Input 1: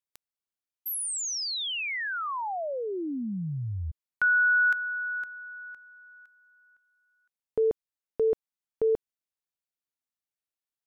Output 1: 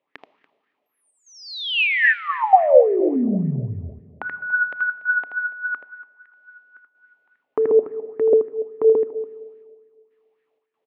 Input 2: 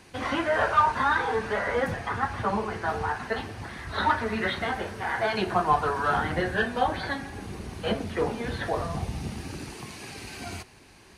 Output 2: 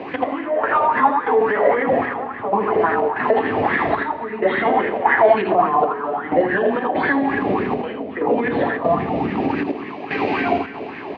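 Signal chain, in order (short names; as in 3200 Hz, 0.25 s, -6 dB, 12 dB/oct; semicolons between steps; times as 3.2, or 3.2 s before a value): dynamic EQ 270 Hz, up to +4 dB, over -38 dBFS, Q 1.2; compressor 6:1, threshold -36 dBFS; step gate "x...xxx.xxxx" 95 bpm -12 dB; speaker cabinet 170–2800 Hz, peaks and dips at 280 Hz +9 dB, 420 Hz +7 dB, 1500 Hz -10 dB; tapped delay 80/287 ms -5.5/-19.5 dB; Schroeder reverb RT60 1.9 s, combs from 25 ms, DRR 15 dB; maximiser +30 dB; LFO bell 3.6 Hz 580–1800 Hz +16 dB; gain -13.5 dB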